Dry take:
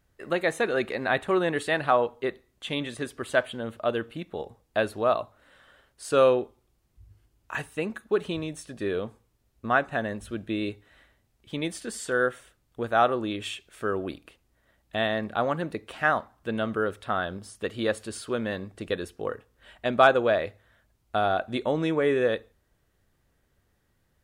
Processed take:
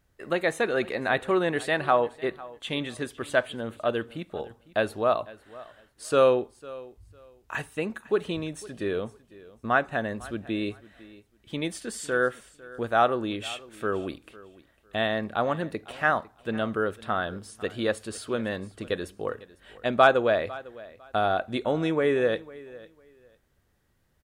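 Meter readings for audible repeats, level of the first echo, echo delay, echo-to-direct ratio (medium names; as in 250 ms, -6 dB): 2, -20.0 dB, 502 ms, -20.0 dB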